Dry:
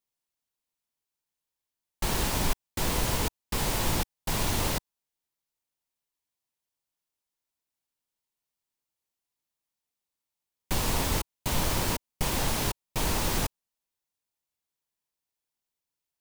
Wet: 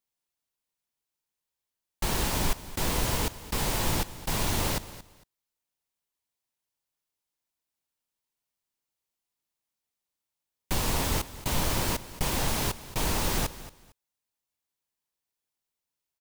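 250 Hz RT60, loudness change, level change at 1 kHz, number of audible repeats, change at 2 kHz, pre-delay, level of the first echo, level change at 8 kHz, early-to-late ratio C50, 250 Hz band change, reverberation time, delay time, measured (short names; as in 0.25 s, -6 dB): none, 0.0 dB, 0.0 dB, 2, 0.0 dB, none, -16.0 dB, 0.0 dB, none, 0.0 dB, none, 0.227 s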